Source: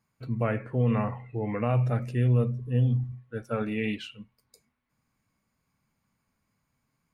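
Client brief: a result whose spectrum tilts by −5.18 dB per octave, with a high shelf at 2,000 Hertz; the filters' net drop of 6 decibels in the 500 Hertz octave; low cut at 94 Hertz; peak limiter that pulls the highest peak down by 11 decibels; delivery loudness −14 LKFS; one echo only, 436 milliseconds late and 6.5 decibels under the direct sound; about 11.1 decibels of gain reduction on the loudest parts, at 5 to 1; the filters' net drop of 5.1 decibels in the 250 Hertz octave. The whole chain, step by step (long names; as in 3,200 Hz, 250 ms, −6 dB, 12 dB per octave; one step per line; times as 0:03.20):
high-pass filter 94 Hz
parametric band 250 Hz −5 dB
parametric band 500 Hz −6.5 dB
high-shelf EQ 2,000 Hz +9 dB
downward compressor 5 to 1, threshold −35 dBFS
brickwall limiter −34.5 dBFS
single-tap delay 436 ms −6.5 dB
level +29.5 dB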